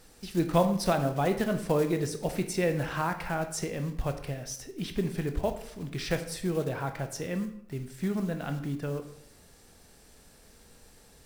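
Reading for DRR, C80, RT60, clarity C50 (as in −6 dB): 7.0 dB, 13.0 dB, 0.70 s, 10.5 dB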